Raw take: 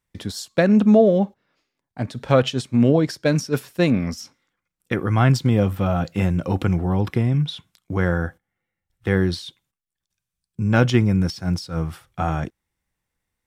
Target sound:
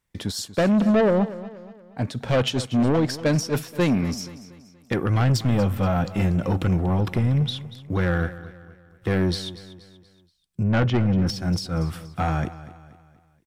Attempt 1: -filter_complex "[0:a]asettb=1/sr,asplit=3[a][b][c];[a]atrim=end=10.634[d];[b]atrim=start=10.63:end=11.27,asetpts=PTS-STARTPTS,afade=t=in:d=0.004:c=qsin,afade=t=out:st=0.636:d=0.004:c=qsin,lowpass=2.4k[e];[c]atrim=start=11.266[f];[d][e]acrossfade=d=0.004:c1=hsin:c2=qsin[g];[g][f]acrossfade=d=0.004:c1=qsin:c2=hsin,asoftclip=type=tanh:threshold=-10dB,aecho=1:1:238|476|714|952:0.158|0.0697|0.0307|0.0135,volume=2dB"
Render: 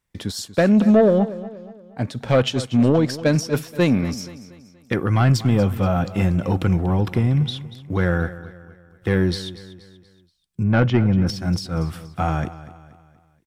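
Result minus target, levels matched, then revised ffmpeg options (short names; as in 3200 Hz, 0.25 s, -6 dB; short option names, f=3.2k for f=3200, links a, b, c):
soft clip: distortion -7 dB
-filter_complex "[0:a]asettb=1/sr,asplit=3[a][b][c];[a]atrim=end=10.634[d];[b]atrim=start=10.63:end=11.27,asetpts=PTS-STARTPTS,afade=t=in:d=0.004:c=qsin,afade=t=out:st=0.636:d=0.004:c=qsin,lowpass=2.4k[e];[c]atrim=start=11.266[f];[d][e]acrossfade=d=0.004:c1=hsin:c2=qsin[g];[g][f]acrossfade=d=0.004:c1=qsin:c2=hsin,asoftclip=type=tanh:threshold=-17.5dB,aecho=1:1:238|476|714|952:0.158|0.0697|0.0307|0.0135,volume=2dB"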